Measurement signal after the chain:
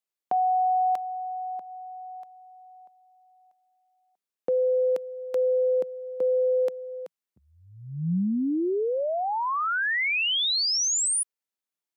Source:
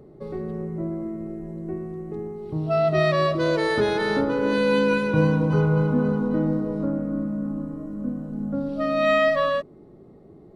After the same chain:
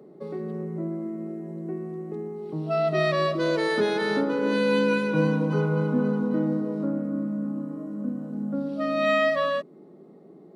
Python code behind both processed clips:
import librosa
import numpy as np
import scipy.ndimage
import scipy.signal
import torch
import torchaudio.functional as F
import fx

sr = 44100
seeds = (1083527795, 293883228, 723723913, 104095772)

y = scipy.signal.sosfilt(scipy.signal.cheby1(4, 1.0, 170.0, 'highpass', fs=sr, output='sos'), x)
y = fx.dynamic_eq(y, sr, hz=730.0, q=0.74, threshold_db=-35.0, ratio=4.0, max_db=-3)